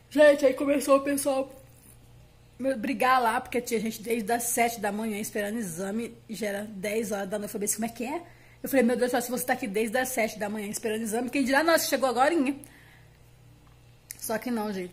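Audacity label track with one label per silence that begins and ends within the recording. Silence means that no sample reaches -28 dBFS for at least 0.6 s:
1.430000	2.610000	silence
12.640000	14.110000	silence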